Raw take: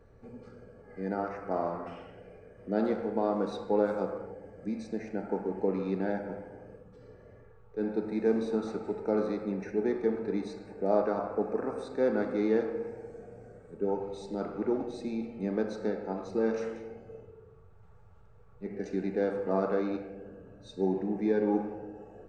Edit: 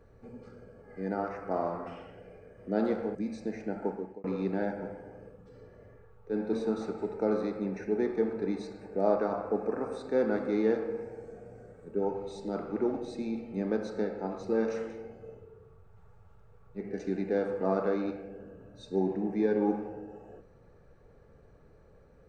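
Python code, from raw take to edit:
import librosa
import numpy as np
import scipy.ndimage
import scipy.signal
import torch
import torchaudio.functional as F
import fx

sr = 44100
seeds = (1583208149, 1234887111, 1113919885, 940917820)

y = fx.edit(x, sr, fx.cut(start_s=3.15, length_s=1.47),
    fx.fade_out_span(start_s=5.32, length_s=0.39),
    fx.cut(start_s=8.0, length_s=0.39), tone=tone)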